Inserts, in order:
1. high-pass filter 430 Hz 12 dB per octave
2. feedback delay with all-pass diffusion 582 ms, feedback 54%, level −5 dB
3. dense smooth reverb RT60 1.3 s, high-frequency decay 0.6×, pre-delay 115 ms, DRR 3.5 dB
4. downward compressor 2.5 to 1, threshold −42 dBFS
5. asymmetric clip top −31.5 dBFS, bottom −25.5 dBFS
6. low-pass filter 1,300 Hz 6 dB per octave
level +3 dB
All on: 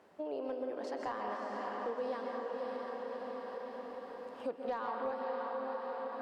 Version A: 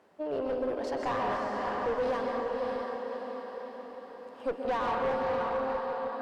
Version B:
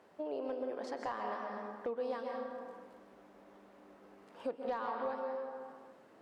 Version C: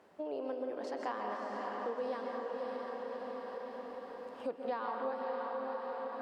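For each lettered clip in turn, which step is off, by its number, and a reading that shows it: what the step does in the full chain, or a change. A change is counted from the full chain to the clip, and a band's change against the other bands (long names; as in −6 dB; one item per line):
4, average gain reduction 7.5 dB
2, change in momentary loudness spread +15 LU
5, change in crest factor +2.5 dB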